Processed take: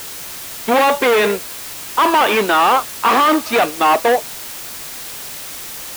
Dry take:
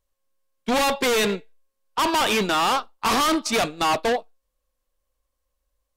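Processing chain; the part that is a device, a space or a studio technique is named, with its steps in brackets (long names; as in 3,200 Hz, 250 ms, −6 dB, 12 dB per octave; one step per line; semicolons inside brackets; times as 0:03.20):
wax cylinder (band-pass filter 310–2,400 Hz; tape wow and flutter; white noise bed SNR 13 dB)
level +9 dB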